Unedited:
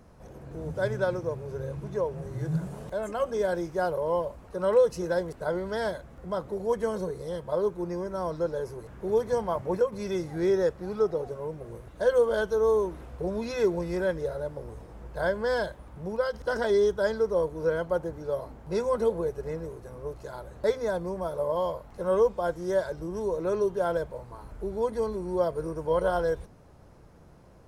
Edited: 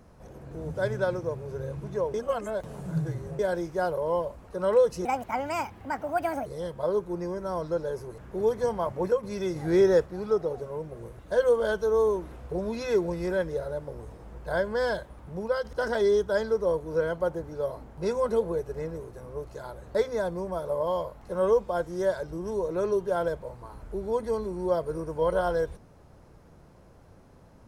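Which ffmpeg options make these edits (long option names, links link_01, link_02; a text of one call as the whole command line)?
ffmpeg -i in.wav -filter_complex "[0:a]asplit=7[link_01][link_02][link_03][link_04][link_05][link_06][link_07];[link_01]atrim=end=2.142[link_08];[link_02]atrim=start=2.138:end=3.392,asetpts=PTS-STARTPTS,areverse[link_09];[link_03]atrim=start=3.388:end=5.054[link_10];[link_04]atrim=start=5.05:end=7.15,asetpts=PTS-STARTPTS,asetrate=65709,aresample=44100,atrim=end_sample=62154,asetpts=PTS-STARTPTS[link_11];[link_05]atrim=start=7.146:end=10.252[link_12];[link_06]atrim=start=10.248:end=10.752,asetpts=PTS-STARTPTS,volume=4dB[link_13];[link_07]atrim=start=10.748[link_14];[link_08][link_09]acrossfade=duration=0.004:curve1=hsin:curve2=hsin[link_15];[link_15][link_10]acrossfade=duration=0.004:curve1=hsin:curve2=hsin[link_16];[link_16][link_11]acrossfade=duration=0.004:curve1=hsin:curve2=hsin[link_17];[link_17][link_12]acrossfade=duration=0.004:curve1=hsin:curve2=hsin[link_18];[link_18][link_13]acrossfade=duration=0.004:curve1=hsin:curve2=hsin[link_19];[link_19][link_14]acrossfade=duration=0.004:curve1=hsin:curve2=hsin" out.wav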